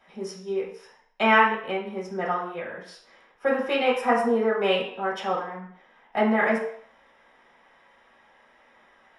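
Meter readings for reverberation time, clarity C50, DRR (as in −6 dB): 0.60 s, 5.0 dB, −7.5 dB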